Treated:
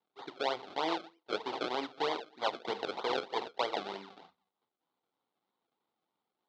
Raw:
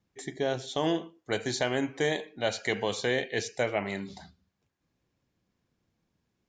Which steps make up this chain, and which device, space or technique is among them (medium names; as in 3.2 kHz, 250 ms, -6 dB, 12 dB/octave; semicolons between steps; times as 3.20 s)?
circuit-bent sampling toy (decimation with a swept rate 32×, swing 100% 3.2 Hz; cabinet simulation 520–4200 Hz, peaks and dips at 590 Hz -6 dB, 870 Hz +4 dB, 1.7 kHz -9 dB, 2.5 kHz -6 dB, 3.8 kHz +4 dB)